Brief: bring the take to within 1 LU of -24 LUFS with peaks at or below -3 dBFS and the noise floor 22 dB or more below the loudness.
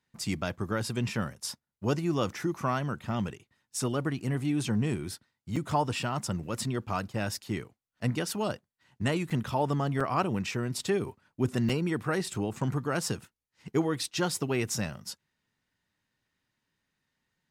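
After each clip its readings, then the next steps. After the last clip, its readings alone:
dropouts 4; longest dropout 5.2 ms; loudness -31.5 LUFS; peak -14.0 dBFS; loudness target -24.0 LUFS
-> interpolate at 5.56/9.3/10/11.69, 5.2 ms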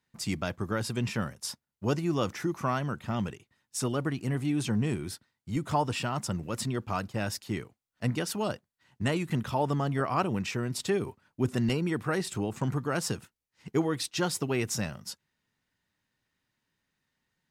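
dropouts 0; loudness -31.5 LUFS; peak -14.0 dBFS; loudness target -24.0 LUFS
-> gain +7.5 dB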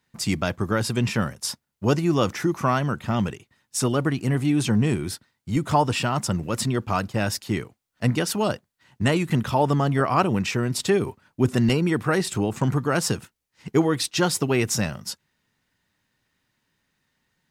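loudness -24.0 LUFS; peak -6.5 dBFS; noise floor -77 dBFS

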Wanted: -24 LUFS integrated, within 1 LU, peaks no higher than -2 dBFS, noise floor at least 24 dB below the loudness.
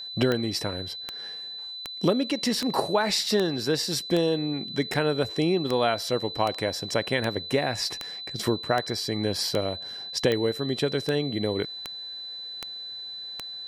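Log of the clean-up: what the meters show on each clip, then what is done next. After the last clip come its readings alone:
clicks 18; steady tone 4000 Hz; tone level -35 dBFS; loudness -27.0 LUFS; peak -9.5 dBFS; loudness target -24.0 LUFS
-> de-click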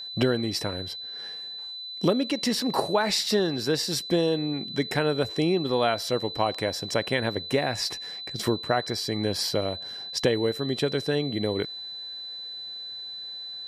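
clicks 0; steady tone 4000 Hz; tone level -35 dBFS
-> notch 4000 Hz, Q 30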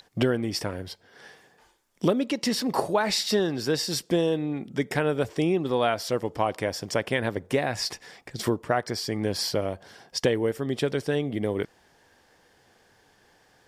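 steady tone none; loudness -27.0 LUFS; peak -9.5 dBFS; loudness target -24.0 LUFS
-> gain +3 dB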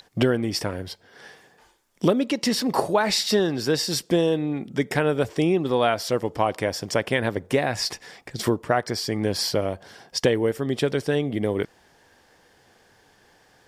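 loudness -24.0 LUFS; peak -6.5 dBFS; noise floor -59 dBFS

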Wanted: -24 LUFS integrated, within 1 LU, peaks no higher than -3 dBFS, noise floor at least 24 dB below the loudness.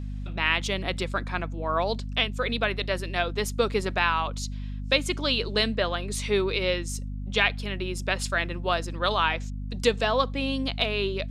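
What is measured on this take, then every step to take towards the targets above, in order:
hum 50 Hz; harmonics up to 250 Hz; hum level -31 dBFS; loudness -27.0 LUFS; peak -6.5 dBFS; loudness target -24.0 LUFS
-> de-hum 50 Hz, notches 5; gain +3 dB

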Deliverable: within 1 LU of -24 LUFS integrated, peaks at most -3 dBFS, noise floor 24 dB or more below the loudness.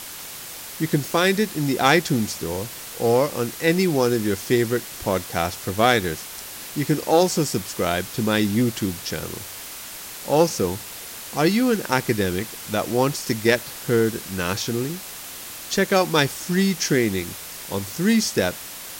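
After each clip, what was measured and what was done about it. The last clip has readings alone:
noise floor -37 dBFS; noise floor target -46 dBFS; loudness -22.0 LUFS; peak -1.5 dBFS; loudness target -24.0 LUFS
-> noise print and reduce 9 dB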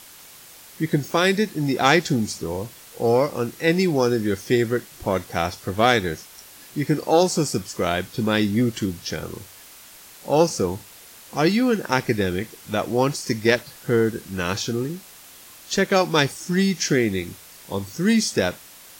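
noise floor -46 dBFS; noise floor target -47 dBFS
-> noise print and reduce 6 dB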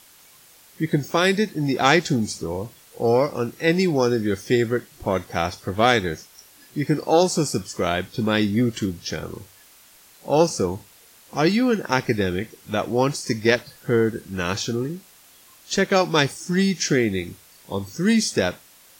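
noise floor -51 dBFS; loudness -22.5 LUFS; peak -2.0 dBFS; loudness target -24.0 LUFS
-> gain -1.5 dB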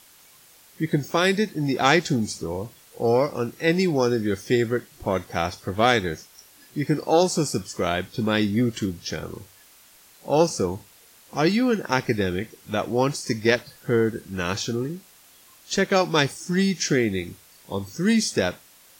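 loudness -24.0 LUFS; peak -3.5 dBFS; noise floor -53 dBFS

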